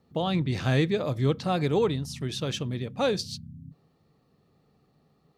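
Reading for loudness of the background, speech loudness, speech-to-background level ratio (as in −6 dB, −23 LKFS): −44.5 LKFS, −27.5 LKFS, 17.0 dB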